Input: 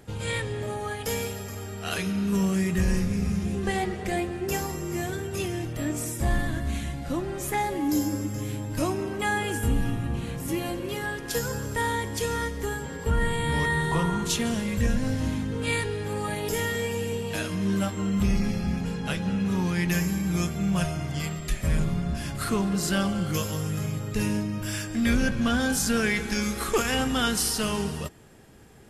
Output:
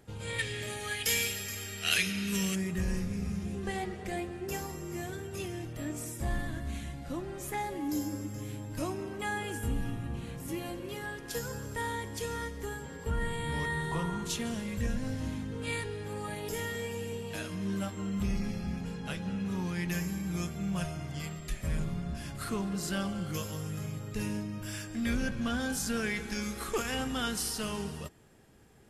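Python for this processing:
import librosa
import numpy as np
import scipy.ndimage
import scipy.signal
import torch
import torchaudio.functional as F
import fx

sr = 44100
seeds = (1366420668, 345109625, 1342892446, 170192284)

y = fx.high_shelf_res(x, sr, hz=1500.0, db=12.0, q=1.5, at=(0.38, 2.54), fade=0.02)
y = y * 10.0 ** (-8.0 / 20.0)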